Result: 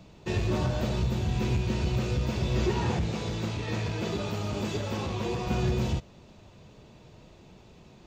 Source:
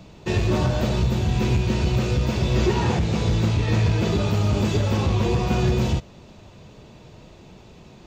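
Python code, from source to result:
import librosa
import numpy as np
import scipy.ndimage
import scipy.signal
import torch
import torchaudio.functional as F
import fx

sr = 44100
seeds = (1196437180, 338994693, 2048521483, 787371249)

y = fx.low_shelf(x, sr, hz=120.0, db=-11.5, at=(3.11, 5.47))
y = y * 10.0 ** (-6.5 / 20.0)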